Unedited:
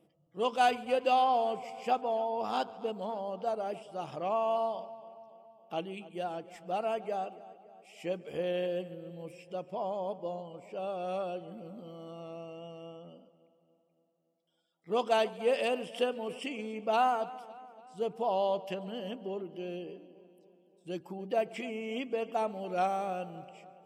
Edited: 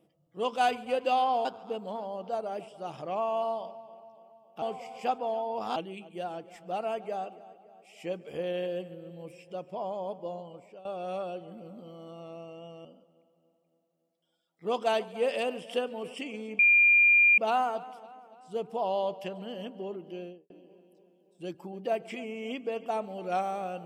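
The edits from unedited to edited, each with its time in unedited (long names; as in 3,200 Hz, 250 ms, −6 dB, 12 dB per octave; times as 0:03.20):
0:01.45–0:02.59: move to 0:05.76
0:10.53–0:10.85: fade out, to −18 dB
0:12.85–0:13.10: remove
0:16.84: insert tone 2,400 Hz −17 dBFS 0.79 s
0:19.60–0:19.96: fade out and dull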